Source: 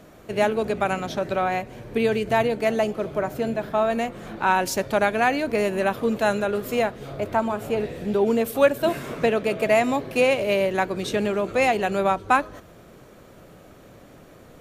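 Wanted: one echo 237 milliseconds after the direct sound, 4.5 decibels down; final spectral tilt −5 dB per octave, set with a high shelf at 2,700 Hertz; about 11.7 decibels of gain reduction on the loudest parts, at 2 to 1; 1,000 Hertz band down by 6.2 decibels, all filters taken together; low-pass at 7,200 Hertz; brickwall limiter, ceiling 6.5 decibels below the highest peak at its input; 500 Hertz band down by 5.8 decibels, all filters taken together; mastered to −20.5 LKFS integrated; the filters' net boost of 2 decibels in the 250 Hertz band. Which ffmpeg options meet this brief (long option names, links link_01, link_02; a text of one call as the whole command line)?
ffmpeg -i in.wav -af "lowpass=7200,equalizer=frequency=250:width_type=o:gain=4,equalizer=frequency=500:width_type=o:gain=-6.5,equalizer=frequency=1000:width_type=o:gain=-7,highshelf=frequency=2700:gain=5.5,acompressor=threshold=-40dB:ratio=2,alimiter=level_in=3.5dB:limit=-24dB:level=0:latency=1,volume=-3.5dB,aecho=1:1:237:0.596,volume=16dB" out.wav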